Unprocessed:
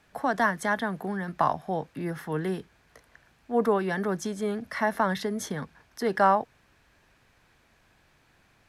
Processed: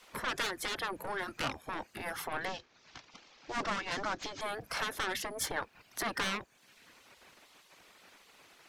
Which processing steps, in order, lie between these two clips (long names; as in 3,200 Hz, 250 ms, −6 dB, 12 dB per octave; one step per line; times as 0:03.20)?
0:02.45–0:04.41: variable-slope delta modulation 32 kbit/s
reverb reduction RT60 0.61 s
in parallel at +1 dB: downward compressor, threshold −37 dBFS, peak gain reduction 19 dB
on the sum: soft clipping −26 dBFS, distortion −7 dB
gate on every frequency bin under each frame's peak −10 dB weak
level +3.5 dB